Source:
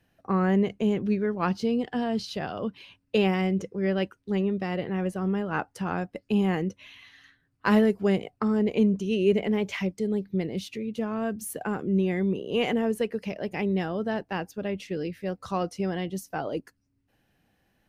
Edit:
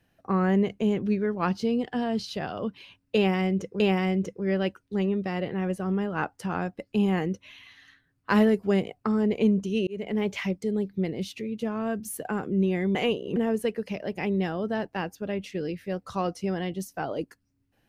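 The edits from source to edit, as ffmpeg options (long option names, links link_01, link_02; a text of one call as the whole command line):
ffmpeg -i in.wav -filter_complex "[0:a]asplit=5[link_01][link_02][link_03][link_04][link_05];[link_01]atrim=end=3.802[link_06];[link_02]atrim=start=3.158:end=9.23,asetpts=PTS-STARTPTS,afade=type=out:start_time=6.068:duration=0.004:curve=hsin[link_07];[link_03]atrim=start=9.23:end=12.312,asetpts=PTS-STARTPTS,afade=type=in:duration=0.36[link_08];[link_04]atrim=start=12.308:end=12.722,asetpts=PTS-STARTPTS,areverse[link_09];[link_05]atrim=start=12.718[link_10];[link_07][link_08]concat=n=2:v=0:a=1[link_11];[link_06][link_11]acrossfade=duration=0.004:curve1=hsin:curve2=hsin[link_12];[link_12][link_09]acrossfade=duration=0.004:curve1=hsin:curve2=hsin[link_13];[link_13][link_10]acrossfade=duration=0.004:curve1=hsin:curve2=hsin" out.wav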